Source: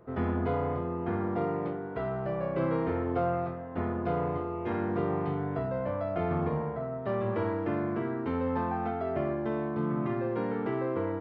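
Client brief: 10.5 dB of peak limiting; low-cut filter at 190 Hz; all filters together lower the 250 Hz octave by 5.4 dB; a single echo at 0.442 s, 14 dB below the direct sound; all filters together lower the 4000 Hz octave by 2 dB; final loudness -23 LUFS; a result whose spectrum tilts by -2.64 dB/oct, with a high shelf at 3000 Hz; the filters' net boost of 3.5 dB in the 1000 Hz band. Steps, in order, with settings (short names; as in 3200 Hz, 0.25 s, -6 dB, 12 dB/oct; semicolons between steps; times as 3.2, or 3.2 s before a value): HPF 190 Hz; bell 250 Hz -6.5 dB; bell 1000 Hz +5 dB; high shelf 3000 Hz +4.5 dB; bell 4000 Hz -7 dB; limiter -27 dBFS; echo 0.442 s -14 dB; gain +12.5 dB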